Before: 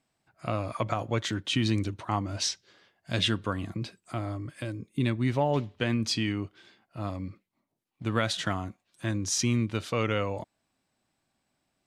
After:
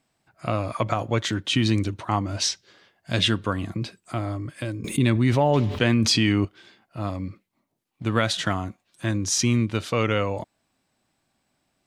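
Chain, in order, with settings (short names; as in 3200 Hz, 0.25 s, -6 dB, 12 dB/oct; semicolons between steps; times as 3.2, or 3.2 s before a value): 4.84–6.45 fast leveller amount 70%; gain +5 dB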